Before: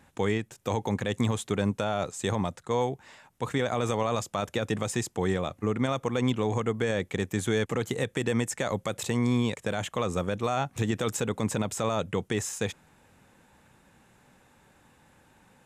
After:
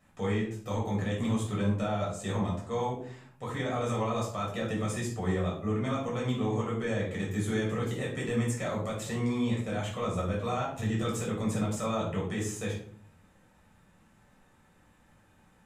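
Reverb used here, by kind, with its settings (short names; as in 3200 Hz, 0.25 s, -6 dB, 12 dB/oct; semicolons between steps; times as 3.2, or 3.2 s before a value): shoebox room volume 570 m³, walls furnished, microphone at 6.3 m; gain -12.5 dB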